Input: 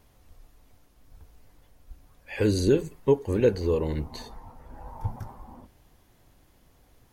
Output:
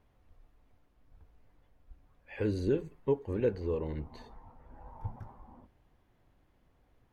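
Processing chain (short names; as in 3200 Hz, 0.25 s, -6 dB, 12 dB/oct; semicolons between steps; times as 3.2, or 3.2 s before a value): tone controls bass 0 dB, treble -15 dB; gain -8 dB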